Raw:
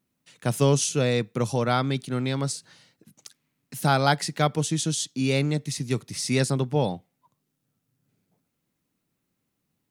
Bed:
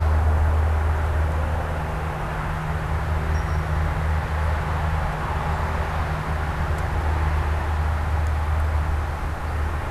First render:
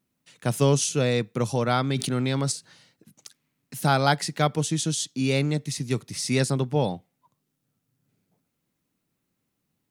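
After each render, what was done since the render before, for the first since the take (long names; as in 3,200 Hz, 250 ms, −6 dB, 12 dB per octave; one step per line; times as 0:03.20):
0:01.90–0:02.52: envelope flattener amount 70%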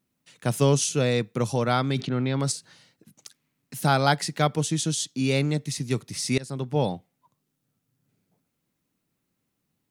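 0:02.00–0:02.40: high-frequency loss of the air 200 metres
0:06.38–0:06.81: fade in, from −23 dB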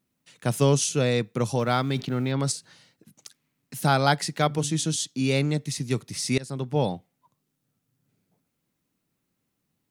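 0:01.59–0:02.32: mu-law and A-law mismatch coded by A
0:04.35–0:04.96: hum removal 72.21 Hz, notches 5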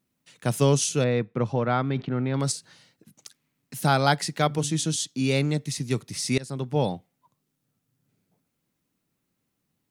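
0:01.04–0:02.34: low-pass filter 2,200 Hz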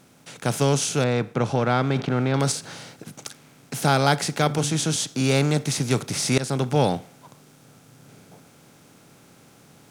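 compressor on every frequency bin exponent 0.6
speech leveller 2 s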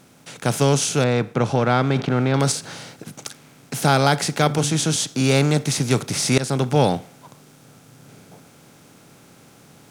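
level +3 dB
brickwall limiter −3 dBFS, peak gain reduction 2 dB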